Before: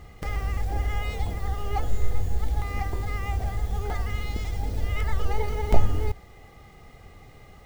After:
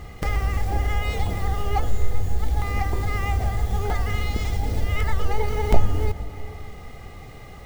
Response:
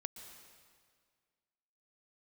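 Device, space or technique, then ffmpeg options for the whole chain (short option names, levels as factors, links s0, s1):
compressed reverb return: -filter_complex "[0:a]asplit=2[s0][s1];[1:a]atrim=start_sample=2205[s2];[s1][s2]afir=irnorm=-1:irlink=0,acompressor=threshold=0.0282:ratio=6,volume=2[s3];[s0][s3]amix=inputs=2:normalize=0"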